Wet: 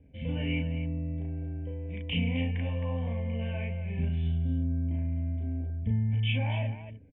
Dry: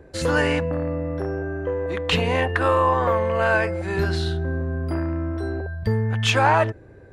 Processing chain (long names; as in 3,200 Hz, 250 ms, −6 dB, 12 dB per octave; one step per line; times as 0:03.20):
formant resonators in series i
phaser with its sweep stopped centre 1,300 Hz, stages 6
loudspeakers that aren't time-aligned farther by 12 metres −2 dB, 91 metres −9 dB
level +4.5 dB